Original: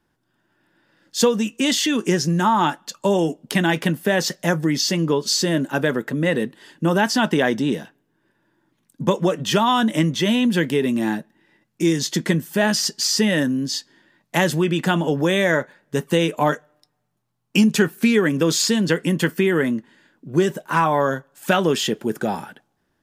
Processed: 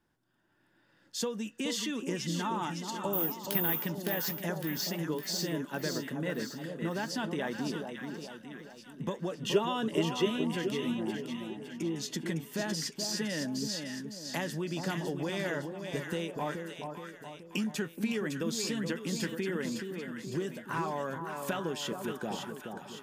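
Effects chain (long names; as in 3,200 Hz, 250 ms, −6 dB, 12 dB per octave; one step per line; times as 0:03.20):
0:10.95–0:11.96: treble cut that deepens with the level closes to 910 Hz, closed at −18 dBFS
downward compressor 2 to 1, threshold −33 dBFS, peak gain reduction 12 dB
0:03.13–0:03.80: bad sample-rate conversion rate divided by 3×, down filtered, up zero stuff
0:09.43–0:10.27: hollow resonant body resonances 420/2,800 Hz, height 17 dB, ringing for 45 ms
on a send: echo with a time of its own for lows and highs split 1,100 Hz, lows 425 ms, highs 559 ms, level −5.5 dB
on the sum: level −6.5 dB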